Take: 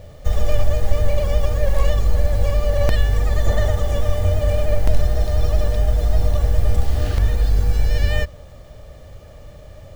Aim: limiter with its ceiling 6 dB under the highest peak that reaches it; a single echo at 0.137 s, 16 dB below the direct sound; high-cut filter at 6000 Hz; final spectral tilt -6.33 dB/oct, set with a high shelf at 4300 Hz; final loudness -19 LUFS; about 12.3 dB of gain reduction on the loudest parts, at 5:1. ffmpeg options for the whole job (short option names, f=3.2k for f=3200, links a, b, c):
-af "lowpass=6k,highshelf=f=4.3k:g=-3.5,acompressor=threshold=-22dB:ratio=5,alimiter=limit=-19dB:level=0:latency=1,aecho=1:1:137:0.158,volume=13dB"